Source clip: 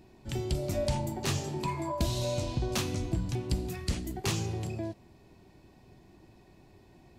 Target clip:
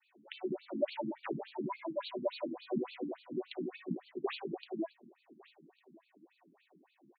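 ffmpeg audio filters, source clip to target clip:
-af "aecho=1:1:1153|2306:0.0794|0.0159,adynamicequalizer=threshold=0.00447:dfrequency=490:dqfactor=0.87:tfrequency=490:tqfactor=0.87:attack=5:release=100:ratio=0.375:range=3:mode=boostabove:tftype=bell,afftfilt=real='re*between(b*sr/1024,220*pow(3300/220,0.5+0.5*sin(2*PI*3.5*pts/sr))/1.41,220*pow(3300/220,0.5+0.5*sin(2*PI*3.5*pts/sr))*1.41)':imag='im*between(b*sr/1024,220*pow(3300/220,0.5+0.5*sin(2*PI*3.5*pts/sr))/1.41,220*pow(3300/220,0.5+0.5*sin(2*PI*3.5*pts/sr))*1.41)':win_size=1024:overlap=0.75"

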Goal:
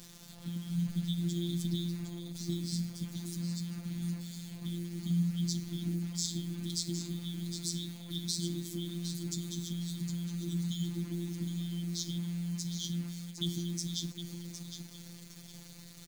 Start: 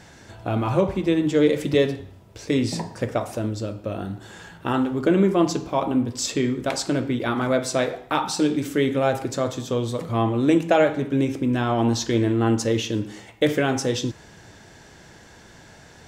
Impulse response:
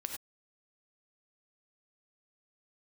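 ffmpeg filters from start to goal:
-af "afftfilt=real='re*(1-between(b*sr/4096,300,3100))':imag='im*(1-between(b*sr/4096,300,3100))':win_size=4096:overlap=0.75,acompressor=threshold=-29dB:ratio=3,acrusher=bits=7:mix=0:aa=0.000001,afftfilt=real='hypot(re,im)*cos(PI*b)':imag='0':win_size=1024:overlap=0.75,aecho=1:1:760|1520|2280:0.355|0.0923|0.024"

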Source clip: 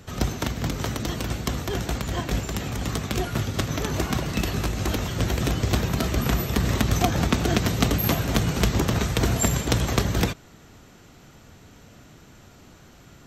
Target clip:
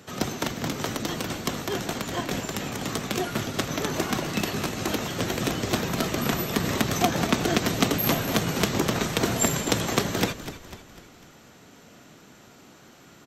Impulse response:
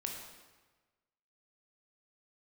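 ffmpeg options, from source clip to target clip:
-filter_complex "[0:a]highpass=180,asplit=6[a][b][c][d][e][f];[b]adelay=249,afreqshift=-50,volume=-13dB[g];[c]adelay=498,afreqshift=-100,volume=-19.4dB[h];[d]adelay=747,afreqshift=-150,volume=-25.8dB[i];[e]adelay=996,afreqshift=-200,volume=-32.1dB[j];[f]adelay=1245,afreqshift=-250,volume=-38.5dB[k];[a][g][h][i][j][k]amix=inputs=6:normalize=0,asplit=2[l][m];[1:a]atrim=start_sample=2205[n];[m][n]afir=irnorm=-1:irlink=0,volume=-20dB[o];[l][o]amix=inputs=2:normalize=0"

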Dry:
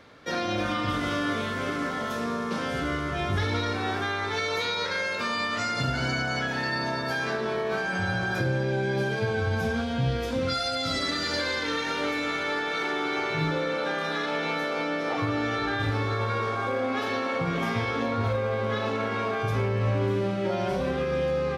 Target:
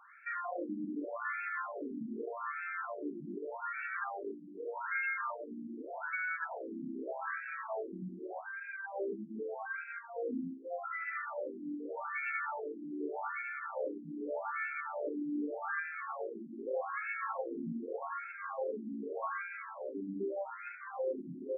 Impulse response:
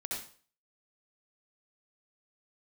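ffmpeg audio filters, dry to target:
-af "alimiter=limit=-23.5dB:level=0:latency=1:release=178,afftfilt=real='re*between(b*sr/4096,130,3400)':imag='im*between(b*sr/4096,130,3400)':win_size=4096:overlap=0.75,afftfilt=real='re*between(b*sr/1024,240*pow(1900/240,0.5+0.5*sin(2*PI*0.83*pts/sr))/1.41,240*pow(1900/240,0.5+0.5*sin(2*PI*0.83*pts/sr))*1.41)':imag='im*between(b*sr/1024,240*pow(1900/240,0.5+0.5*sin(2*PI*0.83*pts/sr))/1.41,240*pow(1900/240,0.5+0.5*sin(2*PI*0.83*pts/sr))*1.41)':win_size=1024:overlap=0.75"

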